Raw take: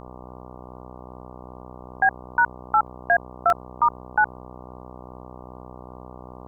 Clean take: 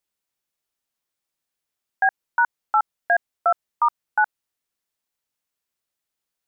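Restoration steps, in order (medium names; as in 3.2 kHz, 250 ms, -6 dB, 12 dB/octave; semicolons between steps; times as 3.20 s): de-hum 62.5 Hz, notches 19; interpolate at 2.87/3.50 s, 1.2 ms; expander -34 dBFS, range -21 dB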